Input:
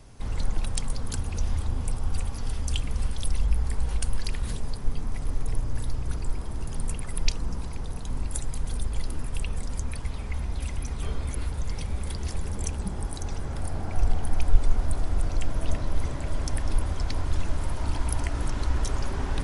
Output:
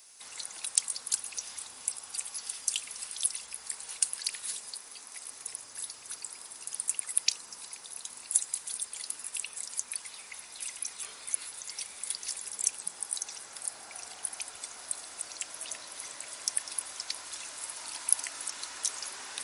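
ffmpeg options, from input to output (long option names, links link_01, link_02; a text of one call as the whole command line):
ffmpeg -i in.wav -filter_complex "[0:a]asettb=1/sr,asplit=3[link_01][link_02][link_03];[link_01]atrim=end=4.744[link_04];[link_02]atrim=start=4.74:end=5.31,asetpts=PTS-STARTPTS,afade=type=in:duration=0.004:curve=qsin,afade=type=out:start_time=0.566:duration=0.004:curve=qsin,equalizer=frequency=120:width=1.5:gain=-11.5[link_05];[link_03]atrim=start=5.306[link_06];[link_04][link_05]acrossfade=duration=0.004:curve1=hsin:curve2=qsin[link_07];[link_07][link_06]acrossfade=duration=0.004:curve1=qsin:curve2=hsin,highpass=frequency=400:poles=1,aderivative,bandreject=frequency=3200:width=21,volume=8.5dB" out.wav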